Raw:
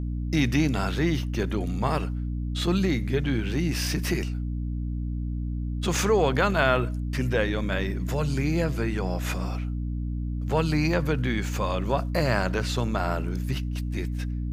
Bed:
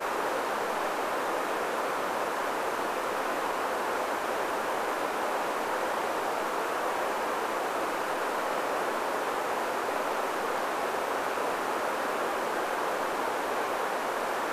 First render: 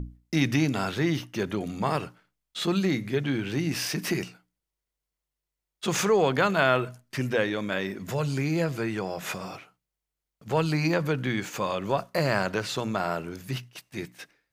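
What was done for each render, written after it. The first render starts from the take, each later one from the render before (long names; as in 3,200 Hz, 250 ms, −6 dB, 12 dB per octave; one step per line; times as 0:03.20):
mains-hum notches 60/120/180/240/300 Hz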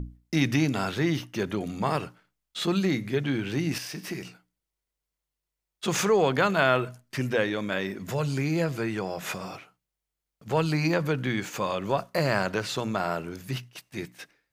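0:03.78–0:04.25: tuned comb filter 63 Hz, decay 1.7 s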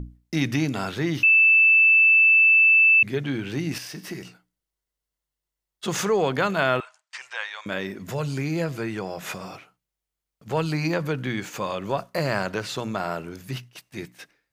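0:01.23–0:03.03: beep over 2,640 Hz −12.5 dBFS
0:03.89–0:06.05: notch filter 2,400 Hz
0:06.80–0:07.66: elliptic band-pass filter 850–8,000 Hz, stop band 50 dB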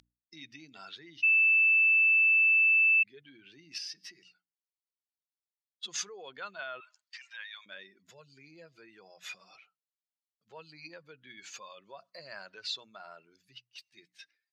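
expanding power law on the bin magnitudes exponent 1.7
resonant band-pass 4,400 Hz, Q 1.9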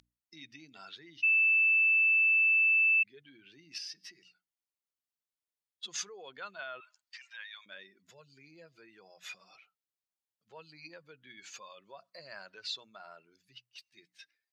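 level −2 dB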